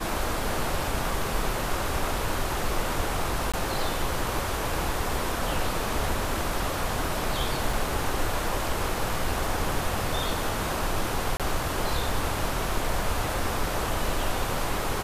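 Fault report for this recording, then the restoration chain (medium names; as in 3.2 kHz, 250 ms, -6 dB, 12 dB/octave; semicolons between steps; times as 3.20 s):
3.52–3.54 s: dropout 16 ms
7.73 s: dropout 3.5 ms
11.37–11.40 s: dropout 27 ms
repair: interpolate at 3.52 s, 16 ms; interpolate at 7.73 s, 3.5 ms; interpolate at 11.37 s, 27 ms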